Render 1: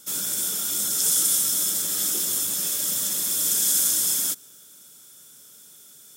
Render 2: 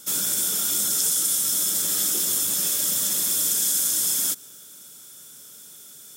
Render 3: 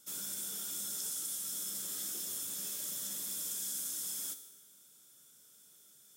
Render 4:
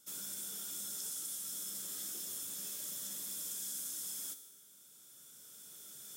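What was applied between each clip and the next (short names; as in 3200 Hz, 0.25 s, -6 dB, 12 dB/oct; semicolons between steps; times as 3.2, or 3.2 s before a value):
compressor, threshold -23 dBFS, peak gain reduction 6 dB; gain +4 dB
resonator 67 Hz, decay 1.1 s, harmonics all, mix 70%; gain -8 dB
recorder AGC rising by 7.7 dB/s; gain -3 dB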